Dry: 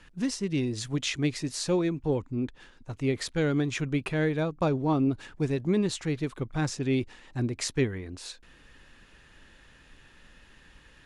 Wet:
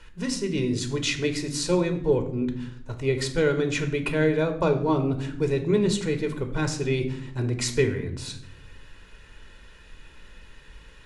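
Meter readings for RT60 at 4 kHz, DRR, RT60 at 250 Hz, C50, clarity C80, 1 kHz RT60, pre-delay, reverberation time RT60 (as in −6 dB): 0.50 s, 5.5 dB, 1.1 s, 11.0 dB, 14.0 dB, 0.60 s, 3 ms, 0.70 s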